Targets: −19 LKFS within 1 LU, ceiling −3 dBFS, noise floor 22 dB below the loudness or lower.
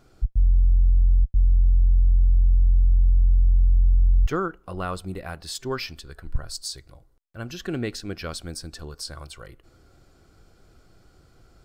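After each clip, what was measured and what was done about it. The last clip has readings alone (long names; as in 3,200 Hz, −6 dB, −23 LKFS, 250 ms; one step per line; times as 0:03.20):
integrated loudness −23.5 LKFS; sample peak −11.5 dBFS; target loudness −19.0 LKFS
→ level +4.5 dB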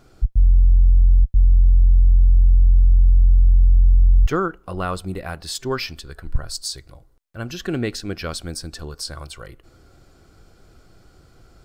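integrated loudness −19.0 LKFS; sample peak −7.0 dBFS; background noise floor −53 dBFS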